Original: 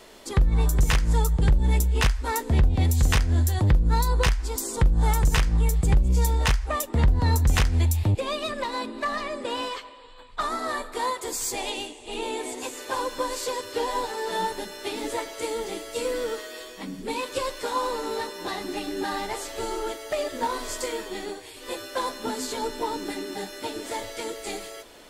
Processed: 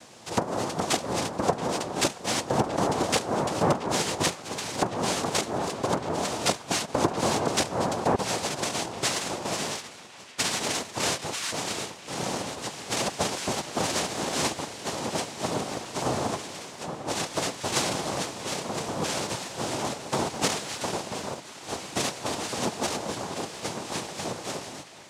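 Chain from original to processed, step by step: noise-vocoded speech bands 2; band-passed feedback delay 677 ms, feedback 77%, band-pass 2.3 kHz, level -16 dB

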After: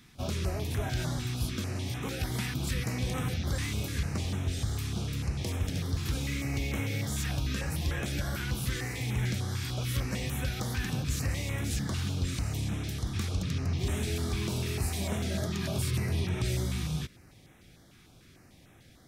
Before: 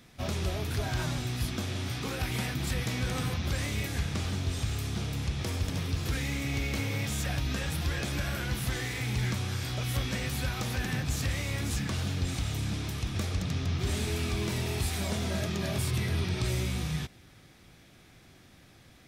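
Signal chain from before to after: step-sequenced notch 6.7 Hz 580–4600 Hz

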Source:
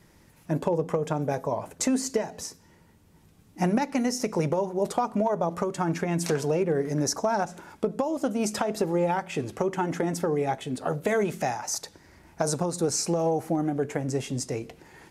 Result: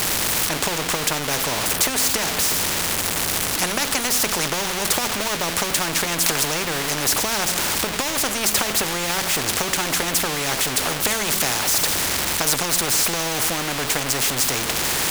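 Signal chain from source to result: jump at every zero crossing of -35 dBFS; spectrum-flattening compressor 4:1; trim +8.5 dB

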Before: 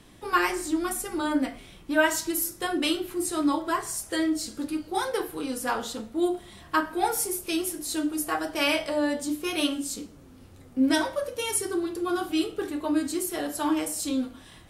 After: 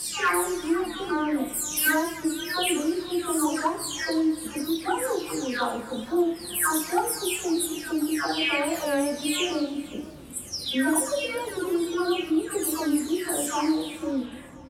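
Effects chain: delay that grows with frequency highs early, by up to 575 ms; high-pass 49 Hz; in parallel at +1.5 dB: compression 6:1, threshold -36 dBFS, peak gain reduction 15.5 dB; on the sum: overload inside the chain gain 15.5 dB; feedback delay 516 ms, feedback 38%, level -20 dB; reverberation RT60 2.6 s, pre-delay 58 ms, DRR 16 dB; warped record 45 rpm, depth 100 cents

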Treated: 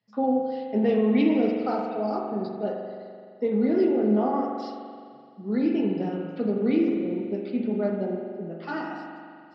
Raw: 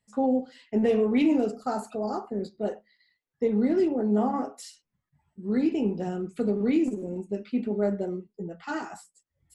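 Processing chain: Chebyshev band-pass 110–5200 Hz, order 5; spring tank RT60 2.2 s, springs 42 ms, chirp 45 ms, DRR 1.5 dB

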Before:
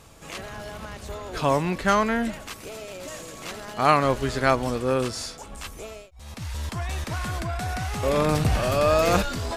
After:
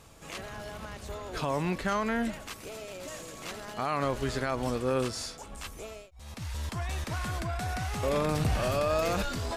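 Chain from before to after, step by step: peak limiter -15.5 dBFS, peak gain reduction 11.5 dB; trim -4 dB

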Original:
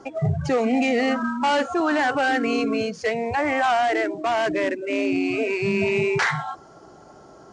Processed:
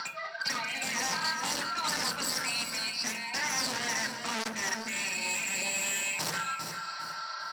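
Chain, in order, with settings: Chebyshev band-pass 1.4–4.5 kHz, order 3; comb 3.2 ms, depth 70%; upward compressor, threshold -28 dBFS; wavefolder -29 dBFS; feedback delay 402 ms, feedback 29%, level -9.5 dB; reverberation RT60 0.40 s, pre-delay 3 ms, DRR 2.5 dB; transformer saturation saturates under 3.7 kHz

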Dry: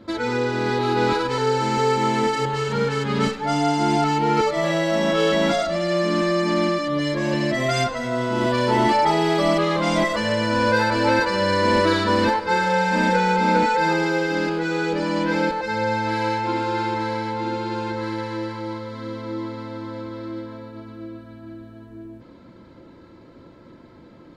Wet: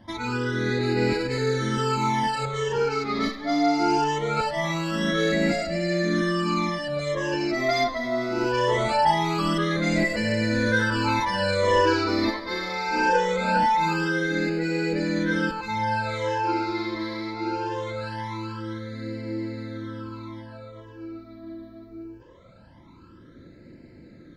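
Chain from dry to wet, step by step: phase shifter stages 12, 0.22 Hz, lowest notch 150–1100 Hz

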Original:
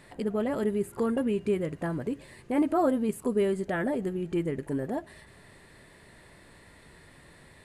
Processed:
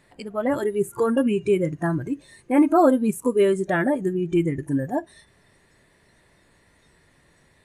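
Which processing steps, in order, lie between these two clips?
spectral noise reduction 14 dB; trim +8.5 dB

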